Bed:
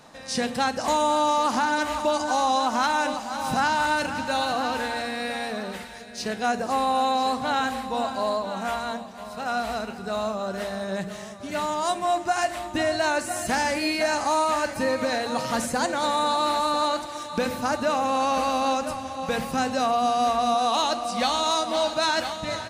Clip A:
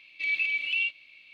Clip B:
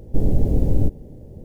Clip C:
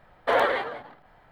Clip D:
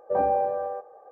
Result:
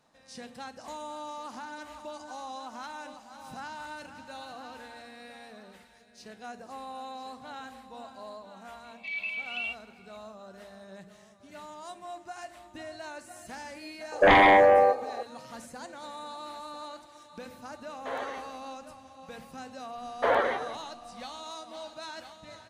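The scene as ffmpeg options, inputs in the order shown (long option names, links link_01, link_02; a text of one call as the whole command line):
ffmpeg -i bed.wav -i cue0.wav -i cue1.wav -i cue2.wav -i cue3.wav -filter_complex "[3:a]asplit=2[link_01][link_02];[0:a]volume=-18dB[link_03];[4:a]aeval=exprs='0.237*sin(PI/2*3.55*val(0)/0.237)':channel_layout=same[link_04];[link_02]highshelf=frequency=3400:gain=-9.5[link_05];[1:a]atrim=end=1.33,asetpts=PTS-STARTPTS,volume=-7dB,afade=type=in:duration=0.004:curve=hsin,afade=type=out:start_time=1.326:duration=0.004:curve=hsin,adelay=8840[link_06];[link_04]atrim=end=1.11,asetpts=PTS-STARTPTS,volume=-1.5dB,afade=type=in:duration=0.004:curve=hsin,afade=type=out:start_time=1.106:duration=0.004:curve=hsin,adelay=622692S[link_07];[link_01]atrim=end=1.31,asetpts=PTS-STARTPTS,volume=-14.5dB,afade=type=in:duration=0.004:curve=hsin,afade=type=out:start_time=1.306:duration=0.004:curve=hsin,adelay=17780[link_08];[link_05]atrim=end=1.31,asetpts=PTS-STARTPTS,volume=-2dB,afade=type=in:duration=0.004:curve=hsin,afade=type=out:start_time=1.306:duration=0.004:curve=hsin,adelay=19950[link_09];[link_03][link_06][link_07][link_08][link_09]amix=inputs=5:normalize=0" out.wav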